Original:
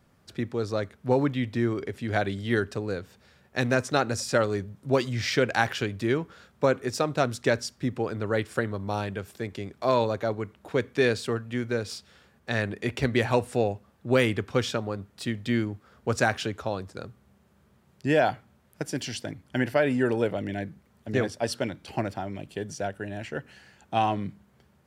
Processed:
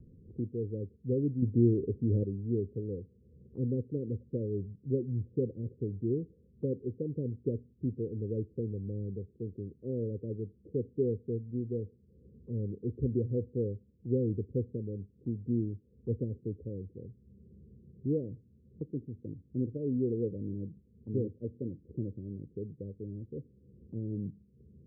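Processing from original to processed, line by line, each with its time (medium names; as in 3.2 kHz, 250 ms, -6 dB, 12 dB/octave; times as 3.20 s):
1.42–2.23 s: gain +6.5 dB
whole clip: steep low-pass 500 Hz 96 dB/octave; bass shelf 170 Hz +7 dB; upward compressor, threshold -36 dBFS; trim -7.5 dB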